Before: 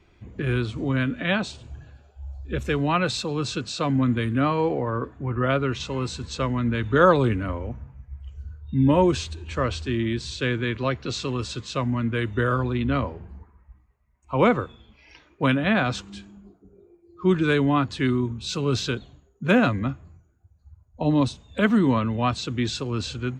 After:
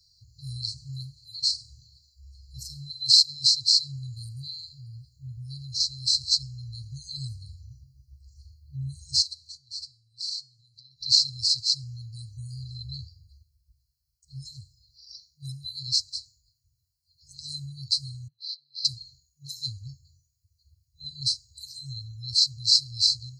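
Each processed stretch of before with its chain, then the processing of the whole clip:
9.22–11.01 HPF 140 Hz + compressor 10:1, threshold -36 dBFS + resonator 310 Hz, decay 0.47 s, mix 50%
18.28–18.85 compressor 5:1, threshold -27 dBFS + band-pass 4400 Hz, Q 2 + air absorption 400 m
whole clip: band shelf 3700 Hz +12.5 dB 1.2 oct; FFT band-reject 150–4000 Hz; tilt +3 dB/oct; gain -1.5 dB

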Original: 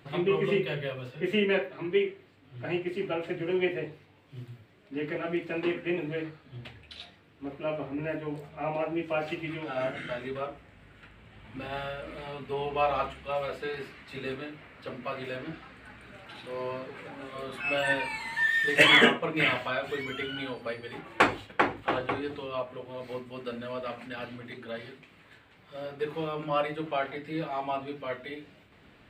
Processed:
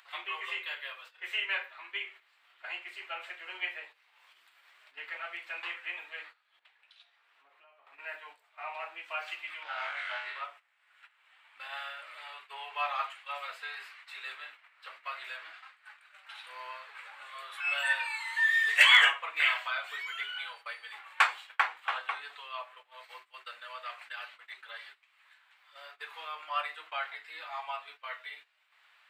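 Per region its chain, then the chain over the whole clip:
2.08–5.87 low shelf 170 Hz +7.5 dB + upward compressor, threshold -35 dBFS
6.59–7.87 tilt -2 dB/oct + compressor 2.5:1, threshold -50 dBFS
9.63–10.44 air absorption 57 m + flutter echo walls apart 3.6 m, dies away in 0.51 s + Doppler distortion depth 0.14 ms
whole clip: HPF 970 Hz 24 dB/oct; gate -51 dBFS, range -13 dB; upward compressor, threshold -52 dBFS

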